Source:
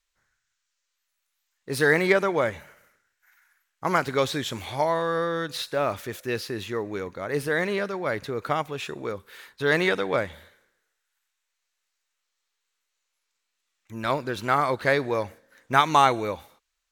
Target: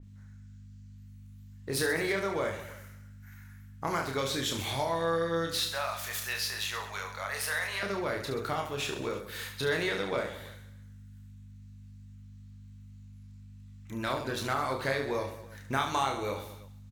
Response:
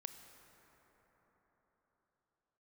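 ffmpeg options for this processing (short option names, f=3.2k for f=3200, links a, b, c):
-filter_complex "[0:a]asettb=1/sr,asplit=3[a][b][c];[a]atrim=end=5.604[d];[b]atrim=start=5.6:end=7.83,asetpts=PTS-STARTPTS,afade=t=in:d=0.004:c=qsin,afade=t=out:st=2.226:d=0.004:c=qsin,highpass=f=750:w=0.5412,highpass=f=750:w=1.3066[e];[c]atrim=start=7.826[f];[d][e]acrossfade=d=0.004:c1=hsin:c2=qsin[g];[g][f]acrossfade=d=0.004:c1=qsin:c2=hsin,acompressor=threshold=-38dB:ratio=2.5,aeval=exprs='val(0)+0.00316*(sin(2*PI*50*n/s)+sin(2*PI*2*50*n/s)/2+sin(2*PI*3*50*n/s)/3+sin(2*PI*4*50*n/s)/4+sin(2*PI*5*50*n/s)/5)':c=same,aecho=1:1:30|72|130.8|213.1|328.4:0.631|0.398|0.251|0.158|0.1,adynamicequalizer=threshold=0.00251:dfrequency=3200:dqfactor=0.7:tfrequency=3200:tqfactor=0.7:attack=5:release=100:ratio=0.375:range=3:mode=boostabove:tftype=highshelf,volume=2dB"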